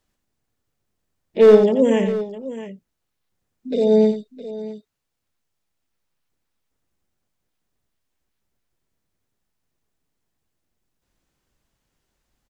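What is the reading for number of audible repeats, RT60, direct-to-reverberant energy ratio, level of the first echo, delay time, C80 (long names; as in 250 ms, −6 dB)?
2, no reverb audible, no reverb audible, −8.0 dB, 88 ms, no reverb audible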